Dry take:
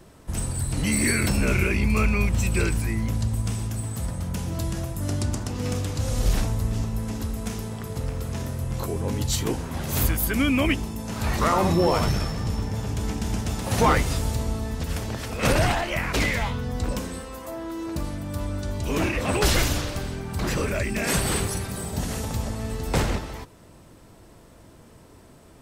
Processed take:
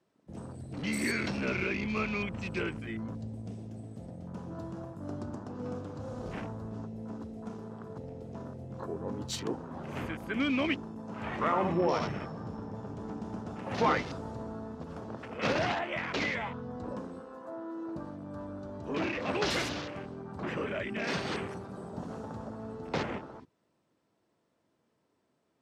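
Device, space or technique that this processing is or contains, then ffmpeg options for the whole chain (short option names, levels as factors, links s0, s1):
over-cleaned archive recording: -af "highpass=180,lowpass=6000,afwtdn=0.0141,volume=0.473"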